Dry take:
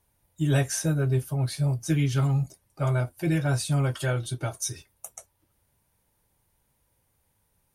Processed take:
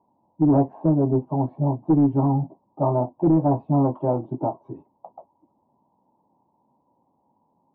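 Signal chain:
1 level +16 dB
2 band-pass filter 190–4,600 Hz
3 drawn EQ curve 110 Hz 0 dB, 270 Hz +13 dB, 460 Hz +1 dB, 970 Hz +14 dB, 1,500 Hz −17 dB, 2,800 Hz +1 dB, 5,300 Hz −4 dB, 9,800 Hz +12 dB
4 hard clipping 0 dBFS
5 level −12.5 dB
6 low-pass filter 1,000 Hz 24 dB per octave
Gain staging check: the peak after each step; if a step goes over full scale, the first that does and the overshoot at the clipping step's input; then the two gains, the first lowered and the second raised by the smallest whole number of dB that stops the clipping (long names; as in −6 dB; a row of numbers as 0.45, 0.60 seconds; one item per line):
+3.5, +1.0, +8.5, 0.0, −12.5, −11.0 dBFS
step 1, 8.5 dB
step 1 +7 dB, step 5 −3.5 dB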